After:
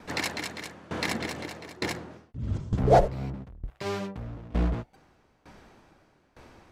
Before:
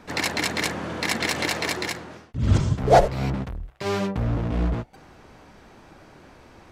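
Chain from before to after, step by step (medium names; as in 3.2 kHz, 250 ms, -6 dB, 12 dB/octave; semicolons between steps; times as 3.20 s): 1.08–3.70 s: tilt shelf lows +4 dB, about 840 Hz; sawtooth tremolo in dB decaying 1.1 Hz, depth 20 dB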